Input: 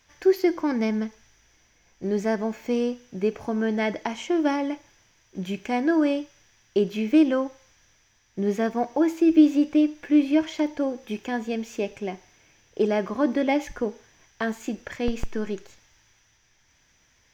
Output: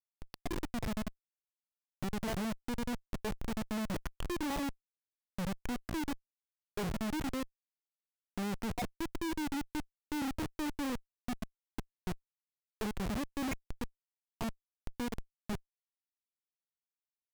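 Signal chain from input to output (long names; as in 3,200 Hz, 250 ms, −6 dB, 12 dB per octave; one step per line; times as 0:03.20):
time-frequency cells dropped at random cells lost 50%
drawn EQ curve 150 Hz 0 dB, 1,200 Hz −15 dB, 5,500 Hz −7 dB
comparator with hysteresis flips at −39.5 dBFS
level −1.5 dB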